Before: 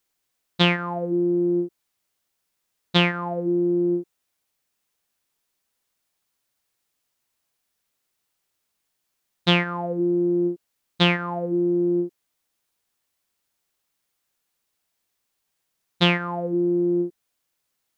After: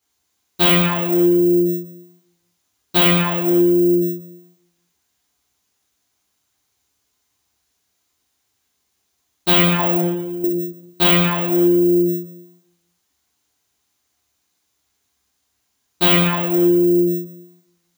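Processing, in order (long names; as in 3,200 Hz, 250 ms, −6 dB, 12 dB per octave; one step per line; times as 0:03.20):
0:09.79–0:10.44: compressor whose output falls as the input rises −27 dBFS, ratio −0.5
bad sample-rate conversion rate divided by 2×, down none, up zero stuff
convolution reverb RT60 1.0 s, pre-delay 3 ms, DRR −6 dB
level −5.5 dB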